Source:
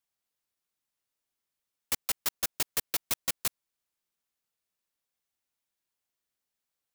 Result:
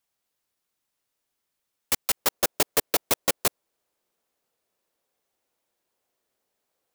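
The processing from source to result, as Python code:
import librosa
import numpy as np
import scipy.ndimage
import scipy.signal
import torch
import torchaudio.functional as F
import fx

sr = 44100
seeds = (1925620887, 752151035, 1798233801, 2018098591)

y = fx.peak_eq(x, sr, hz=500.0, db=fx.steps((0.0, 3.0), (2.17, 12.5)), octaves=2.0)
y = y * librosa.db_to_amplitude(5.5)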